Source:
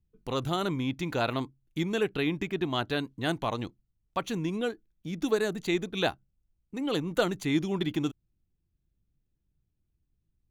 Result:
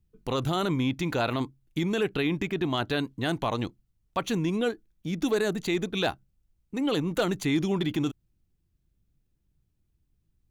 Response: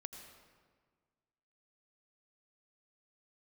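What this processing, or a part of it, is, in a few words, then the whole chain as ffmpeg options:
clipper into limiter: -af "asoftclip=type=hard:threshold=0.141,alimiter=limit=0.0841:level=0:latency=1:release=19,volume=1.68"

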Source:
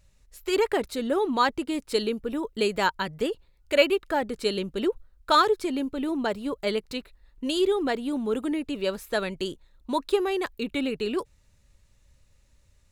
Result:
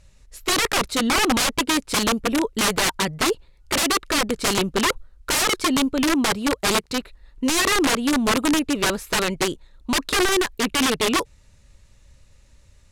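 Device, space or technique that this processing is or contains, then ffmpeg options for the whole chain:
overflowing digital effects unit: -filter_complex "[0:a]asettb=1/sr,asplit=3[s0][s1][s2];[s0]atrim=end=6.034[s3];[s1]atrim=start=6.03:end=6.96,asetpts=PTS-STARTPTS,afade=t=in:d=0.004:c=qsin,afade=t=out:st=0.926:d=0.004:c=qsin,highpass=47[s4];[s2]atrim=start=6.956[s5];[s3][s4]acrossfade=d=0.004:c1=hsin:c2=qsin[s6];[s6][s5]acrossfade=d=0.004:c1=qsin:c2=hsin,aeval=exprs='(mod(13.3*val(0)+1,2)-1)/13.3':c=same,lowpass=11000,volume=2.66"

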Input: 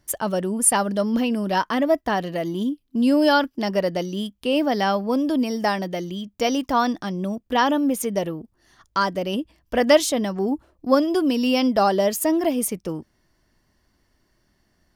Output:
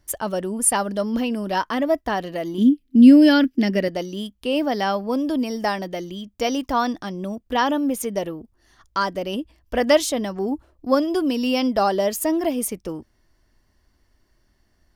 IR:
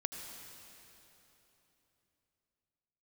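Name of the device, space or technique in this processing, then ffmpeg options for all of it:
low shelf boost with a cut just above: -filter_complex "[0:a]lowshelf=f=92:g=8,equalizer=f=160:t=o:w=0.71:g=-6,asettb=1/sr,asplit=3[s0][s1][s2];[s0]atrim=end=2.584[s3];[s1]atrim=start=2.58:end=3.88,asetpts=PTS-STARTPTS,afade=t=in:d=0.004:c=qsin,afade=t=out:st=1.296:d=0.004:c=qsin,equalizer=f=250:t=o:w=1:g=12,equalizer=f=1000:t=o:w=1:g=-11,equalizer=f=2000:t=o:w=1:g=8[s4];[s2]atrim=start=3.876[s5];[s3][s4]acrossfade=d=0.004:c1=hsin:c2=qsin[s6];[s6][s5]acrossfade=d=0.004:c1=qsin:c2=hsin,volume=0.891"

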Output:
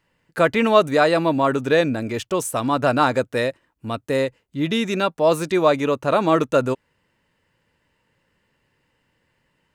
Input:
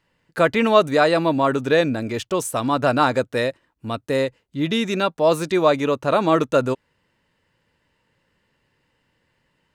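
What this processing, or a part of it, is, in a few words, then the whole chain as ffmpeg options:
exciter from parts: -filter_complex "[0:a]asplit=2[s0][s1];[s1]highpass=2400,asoftclip=type=tanh:threshold=0.0335,highpass=f=2900:w=0.5412,highpass=f=2900:w=1.3066,volume=0.251[s2];[s0][s2]amix=inputs=2:normalize=0"

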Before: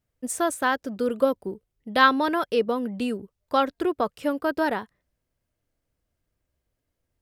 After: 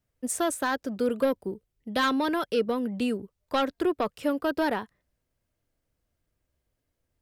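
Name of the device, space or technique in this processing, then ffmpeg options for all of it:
one-band saturation: -filter_complex "[0:a]asettb=1/sr,asplit=3[s0][s1][s2];[s0]atrim=end=1.414[s3];[s1]atrim=start=1.41:end=2.92,asetpts=PTS-STARTPTS,afade=t=in:d=0.004:c=qsin,afade=t=out:st=1.506:d=0.004:c=qsin,equalizer=f=920:t=o:w=2.1:g=-2.5[s4];[s2]atrim=start=2.916[s5];[s3][s4]acrossfade=d=0.004:c1=hsin:c2=qsin[s6];[s6][s5]acrossfade=d=0.004:c1=qsin:c2=hsin,acrossover=split=360|3200[s7][s8][s9];[s8]asoftclip=type=tanh:threshold=0.0841[s10];[s7][s10][s9]amix=inputs=3:normalize=0"

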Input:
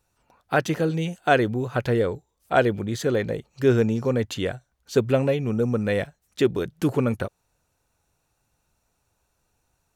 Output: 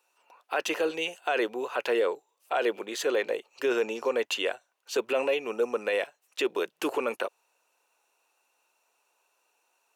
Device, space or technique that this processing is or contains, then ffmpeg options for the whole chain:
laptop speaker: -af "highpass=f=390:w=0.5412,highpass=f=390:w=1.3066,equalizer=f=1000:t=o:w=0.42:g=5.5,equalizer=f=2700:t=o:w=0.3:g=10,alimiter=limit=0.133:level=0:latency=1:release=18"

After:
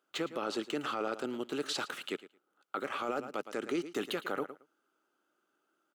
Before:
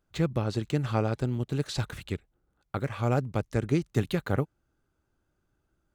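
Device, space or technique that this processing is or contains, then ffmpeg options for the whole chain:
laptop speaker: -af "highpass=f=280:w=0.5412,highpass=f=280:w=1.3066,equalizer=f=1300:t=o:w=0.27:g=9,equalizer=f=3000:t=o:w=0.31:g=6.5,aecho=1:1:111|222:0.133|0.02,alimiter=level_in=1.06:limit=0.0631:level=0:latency=1:release=11,volume=0.944"

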